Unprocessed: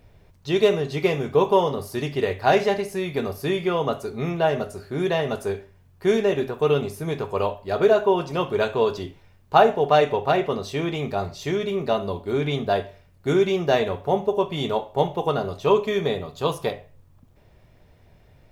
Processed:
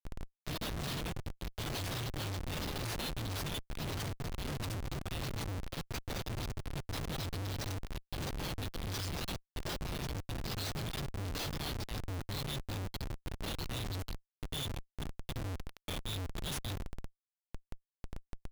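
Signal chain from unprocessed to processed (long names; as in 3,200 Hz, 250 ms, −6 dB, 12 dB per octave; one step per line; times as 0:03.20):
delay with pitch and tempo change per echo 85 ms, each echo +3 semitones, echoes 3
reversed playback
downward compressor 16 to 1, threshold −31 dBFS, peak gain reduction 22.5 dB
reversed playback
inverse Chebyshev band-stop filter 220–1,500 Hz, stop band 50 dB
comparator with hysteresis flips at −48.5 dBFS
level +15 dB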